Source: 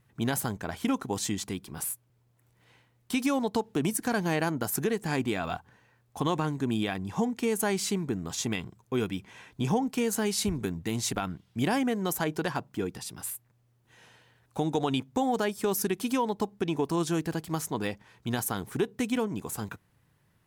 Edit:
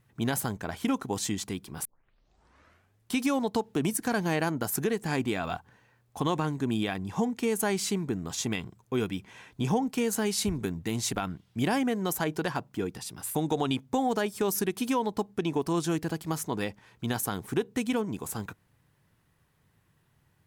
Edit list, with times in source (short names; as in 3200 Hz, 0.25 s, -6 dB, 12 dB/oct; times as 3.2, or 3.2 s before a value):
1.85 tape start 1.27 s
13.35–14.58 cut